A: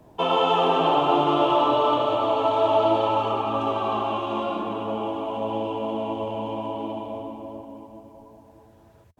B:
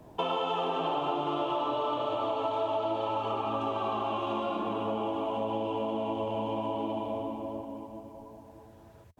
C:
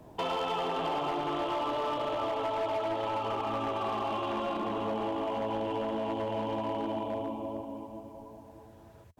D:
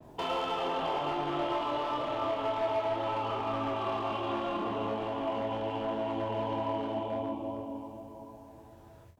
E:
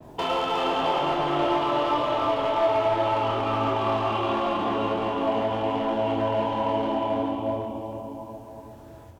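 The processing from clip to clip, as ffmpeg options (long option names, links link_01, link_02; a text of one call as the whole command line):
ffmpeg -i in.wav -af "acompressor=threshold=-28dB:ratio=6" out.wav
ffmpeg -i in.wav -af "volume=27.5dB,asoftclip=hard,volume=-27.5dB" out.wav
ffmpeg -i in.wav -af "aecho=1:1:26|47:0.668|0.422,agate=range=-33dB:threshold=-58dB:ratio=3:detection=peak,adynamicequalizer=threshold=0.002:dfrequency=5800:dqfactor=0.7:tfrequency=5800:tqfactor=0.7:attack=5:release=100:ratio=0.375:range=3:mode=cutabove:tftype=highshelf,volume=-2dB" out.wav
ffmpeg -i in.wav -af "aecho=1:1:362:0.596,volume=6.5dB" out.wav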